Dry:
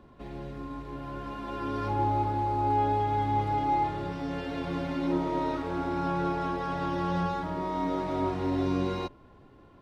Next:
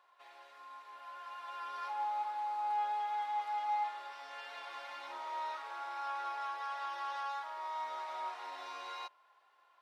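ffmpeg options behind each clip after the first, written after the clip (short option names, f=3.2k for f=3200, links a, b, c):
-af "highpass=f=820:w=0.5412,highpass=f=820:w=1.3066,volume=-4.5dB"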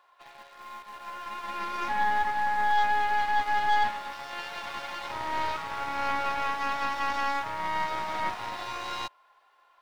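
-filter_complex "[0:a]aeval=exprs='0.0447*(cos(1*acos(clip(val(0)/0.0447,-1,1)))-cos(1*PI/2))+0.0126*(cos(4*acos(clip(val(0)/0.0447,-1,1)))-cos(4*PI/2))':c=same,asplit=2[a][b];[b]aeval=exprs='val(0)*gte(abs(val(0)),0.00335)':c=same,volume=-6dB[c];[a][c]amix=inputs=2:normalize=0,volume=5.5dB"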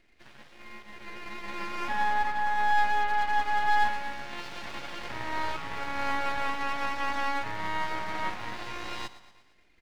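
-af "lowpass=f=3.4k:p=1,aecho=1:1:116|232|348|464|580:0.178|0.0996|0.0558|0.0312|0.0175,aeval=exprs='abs(val(0))':c=same"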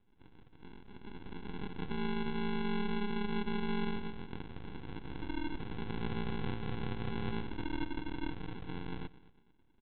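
-af "alimiter=limit=-20.5dB:level=0:latency=1:release=13,aresample=8000,acrusher=samples=13:mix=1:aa=0.000001,aresample=44100,volume=-5dB"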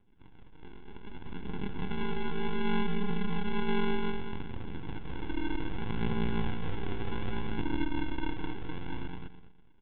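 -filter_complex "[0:a]aphaser=in_gain=1:out_gain=1:delay=2.9:decay=0.3:speed=0.65:type=triangular,asplit=2[a][b];[b]aecho=0:1:208|416|624:0.631|0.114|0.0204[c];[a][c]amix=inputs=2:normalize=0,aresample=8000,aresample=44100,volume=2dB"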